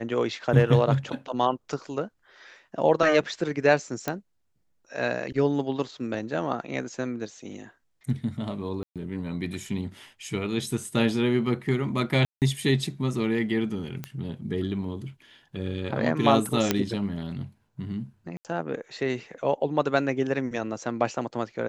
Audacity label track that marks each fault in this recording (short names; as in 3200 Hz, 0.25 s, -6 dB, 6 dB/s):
4.080000	4.080000	pop -12 dBFS
8.830000	8.960000	gap 0.127 s
12.250000	12.420000	gap 0.168 s
14.040000	14.040000	pop -18 dBFS
16.710000	16.710000	pop -6 dBFS
18.370000	18.450000	gap 78 ms